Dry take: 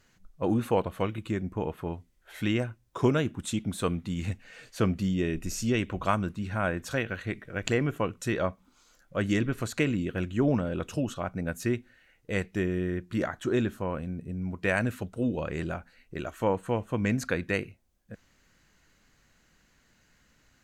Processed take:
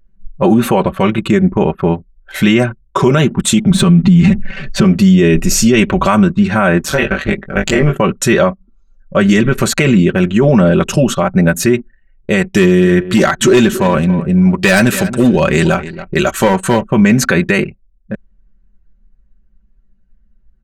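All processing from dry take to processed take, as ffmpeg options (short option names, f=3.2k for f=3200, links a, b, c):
-filter_complex "[0:a]asettb=1/sr,asplit=3[a][b][c];[a]atrim=end=3.704[d];[b]atrim=start=3.7:end=4.84,asetpts=PTS-STARTPTS,afade=t=in:d=0.004:c=qsin,afade=t=out:st=1.136:d=0.004:c=qsin,bass=f=250:g=12,treble=f=4k:g=-2,aecho=1:1:5.2:0.86,atrim=end_sample=50274,adynamicsmooth=sensitivity=7.5:basefreq=6.1k[e];[c]atrim=start=4.836[f];[d][e]acrossfade=d=0.004:c1=hsin:c2=qsin[g];[g][f]acrossfade=d=0.004:c1=qsin:c2=hsin,asettb=1/sr,asplit=3[h][i][j];[h]atrim=end=6.854[k];[i]atrim=start=6.85:end=7.93,asetpts=PTS-STARTPTS,afade=t=in:d=0.004:c=qsin,afade=t=out:st=1.076:d=0.004:c=qsin,tremolo=f=150:d=0.788,asplit=2[l][m];[m]adelay=20,volume=-4dB[n];[l][n]amix=inputs=2:normalize=0,atrim=end_sample=47628[o];[j]atrim=start=7.926[p];[k][o]acrossfade=d=0.004:c1=hsin:c2=qsin[q];[q][p]acrossfade=d=0.004:c1=qsin:c2=hsin,asettb=1/sr,asplit=3[r][s][t];[r]atrim=end=12.544[u];[s]atrim=start=12.54:end=16.81,asetpts=PTS-STARTPTS,afade=t=in:d=0.004:c=qsin,afade=t=out:st=4.266:d=0.004:c=qsin,equalizer=f=7.3k:w=0.35:g=8.5,volume=22dB,asoftclip=hard,volume=-22dB,aecho=1:1:278|556:0.158|0.0285,atrim=end_sample=188307[v];[t]atrim=start=16.806[w];[u][v]acrossfade=d=0.004:c1=hsin:c2=qsin[x];[x][w]acrossfade=d=0.004:c1=qsin:c2=hsin,anlmdn=0.0251,aecho=1:1:5.2:0.72,alimiter=level_in=21.5dB:limit=-1dB:release=50:level=0:latency=1,volume=-1dB"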